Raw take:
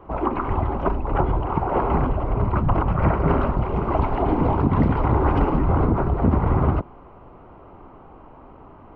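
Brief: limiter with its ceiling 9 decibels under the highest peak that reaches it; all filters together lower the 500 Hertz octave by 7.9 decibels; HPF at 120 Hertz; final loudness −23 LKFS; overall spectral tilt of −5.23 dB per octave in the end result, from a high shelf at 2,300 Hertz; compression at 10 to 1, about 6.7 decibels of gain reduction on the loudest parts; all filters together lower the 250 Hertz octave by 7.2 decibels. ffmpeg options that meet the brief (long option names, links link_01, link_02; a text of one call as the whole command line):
ffmpeg -i in.wav -af "highpass=120,equalizer=frequency=250:width_type=o:gain=-7,equalizer=frequency=500:width_type=o:gain=-8,highshelf=frequency=2300:gain=-6,acompressor=threshold=-27dB:ratio=10,volume=13dB,alimiter=limit=-13.5dB:level=0:latency=1" out.wav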